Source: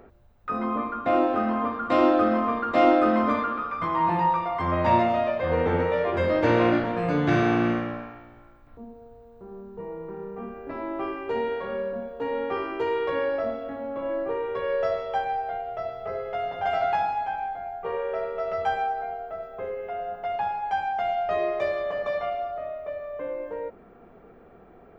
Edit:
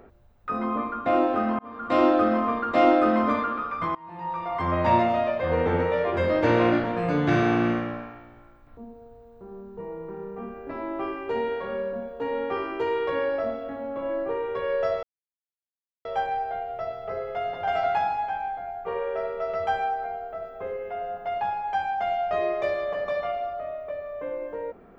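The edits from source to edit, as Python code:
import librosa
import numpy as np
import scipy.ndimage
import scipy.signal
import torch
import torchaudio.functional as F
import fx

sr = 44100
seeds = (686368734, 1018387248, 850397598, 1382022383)

y = fx.edit(x, sr, fx.fade_in_span(start_s=1.59, length_s=0.38),
    fx.fade_in_from(start_s=3.95, length_s=0.61, curve='qua', floor_db=-23.5),
    fx.insert_silence(at_s=15.03, length_s=1.02), tone=tone)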